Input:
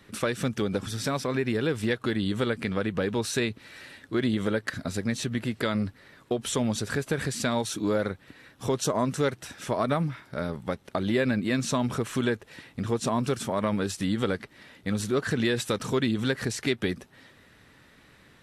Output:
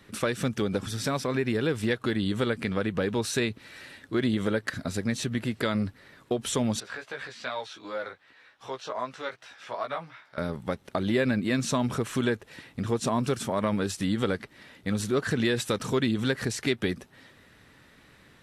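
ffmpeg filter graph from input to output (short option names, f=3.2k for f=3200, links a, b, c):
-filter_complex "[0:a]asettb=1/sr,asplit=3[a][b][c];[a]atrim=end=6.804[d];[b]atrim=start=6.8:end=10.38,asetpts=PTS-STARTPTS,afade=t=in:d=0.004:c=qsin,afade=t=out:st=3.576:d=0.004:c=qsin,acrossover=split=4700[e][f];[f]acompressor=threshold=-47dB:ratio=4:attack=1:release=60[g];[e][g]amix=inputs=2:normalize=0,acrossover=split=540 5800:gain=0.112 1 0.2[h][i][j];[h][i][j]amix=inputs=3:normalize=0,flanger=delay=15:depth=2.9:speed=2.6[k];[c]atrim=start=10.376[l];[d][k]acrossfade=d=0.004:c1=hsin:c2=qsin[m];[m][l]acrossfade=d=0.004:c1=qsin:c2=hsin"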